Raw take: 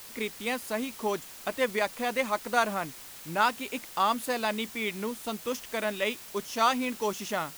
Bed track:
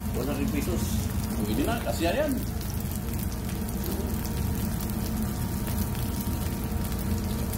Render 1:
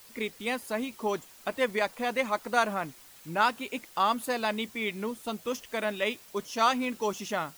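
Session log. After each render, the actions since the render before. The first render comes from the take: noise reduction 8 dB, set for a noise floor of -46 dBFS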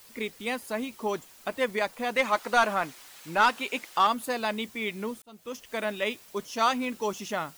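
2.16–4.07 s: overdrive pedal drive 12 dB, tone 5.9 kHz, clips at -11.5 dBFS; 5.22–5.76 s: fade in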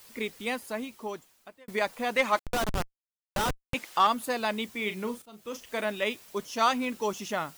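0.44–1.68 s: fade out; 2.39–3.74 s: Schmitt trigger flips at -22.5 dBFS; 4.75–5.81 s: doubling 38 ms -10 dB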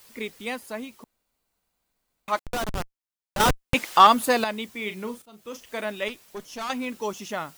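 1.04–2.28 s: room tone; 3.40–4.44 s: gain +9 dB; 6.08–6.70 s: valve stage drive 29 dB, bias 0.5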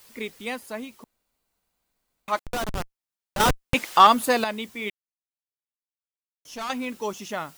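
4.90–6.45 s: mute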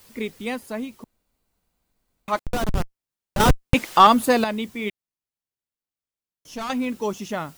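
bass shelf 380 Hz +9.5 dB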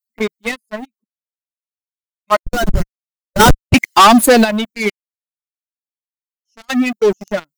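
expander on every frequency bin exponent 2; waveshaping leveller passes 5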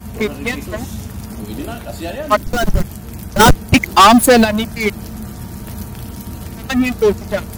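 add bed track +0.5 dB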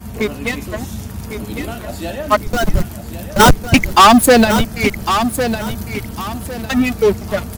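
feedback delay 1104 ms, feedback 29%, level -9 dB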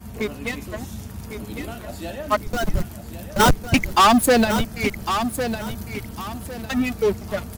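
trim -7 dB

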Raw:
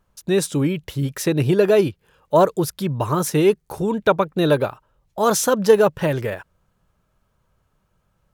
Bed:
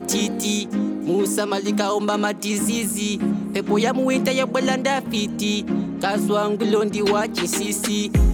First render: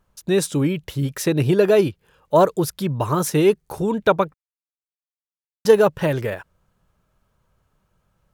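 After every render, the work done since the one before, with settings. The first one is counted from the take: 4.34–5.65 s: mute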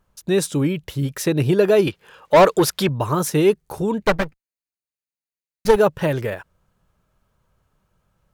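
1.87–2.89 s: overdrive pedal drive 19 dB, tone 4.7 kHz, clips at -4 dBFS; 4.01–5.76 s: comb filter that takes the minimum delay 0.45 ms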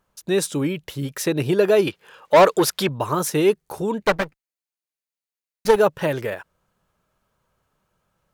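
bass shelf 150 Hz -11 dB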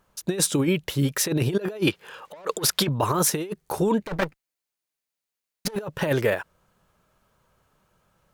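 compressor with a negative ratio -23 dBFS, ratio -0.5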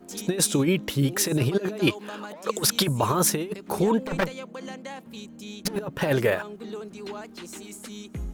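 add bed -17.5 dB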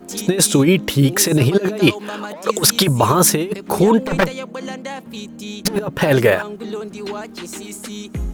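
trim +9 dB; peak limiter -1 dBFS, peak gain reduction 2.5 dB

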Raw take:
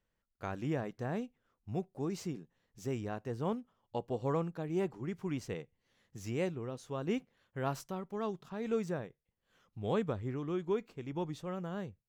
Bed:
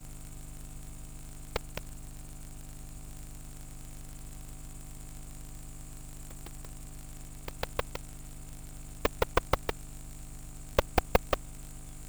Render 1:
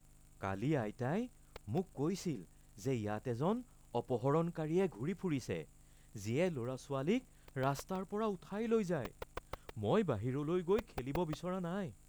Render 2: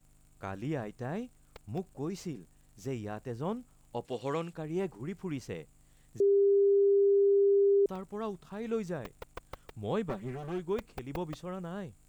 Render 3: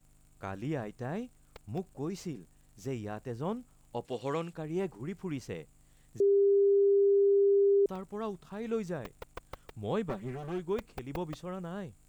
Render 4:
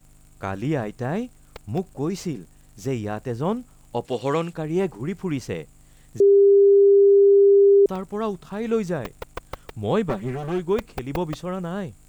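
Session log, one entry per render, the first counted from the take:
add bed -18 dB
4.05–4.53 s: frequency weighting D; 6.20–7.86 s: bleep 399 Hz -21 dBFS; 10.09–10.60 s: comb filter that takes the minimum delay 5.2 ms
no audible change
trim +10.5 dB

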